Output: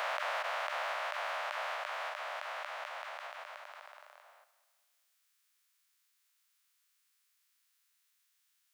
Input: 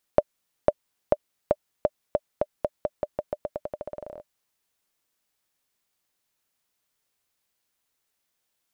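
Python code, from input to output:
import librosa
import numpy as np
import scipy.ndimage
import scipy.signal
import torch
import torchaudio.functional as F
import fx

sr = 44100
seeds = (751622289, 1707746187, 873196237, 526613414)

p1 = fx.spec_dilate(x, sr, span_ms=480)
p2 = scipy.signal.sosfilt(scipy.signal.cheby2(4, 70, 260.0, 'highpass', fs=sr, output='sos'), p1)
p3 = fx.dynamic_eq(p2, sr, hz=2800.0, q=0.7, threshold_db=-53.0, ratio=4.0, max_db=6)
p4 = fx.hpss(p3, sr, part='harmonic', gain_db=-10)
y = p4 + fx.echo_feedback(p4, sr, ms=204, feedback_pct=45, wet_db=-16.5, dry=0)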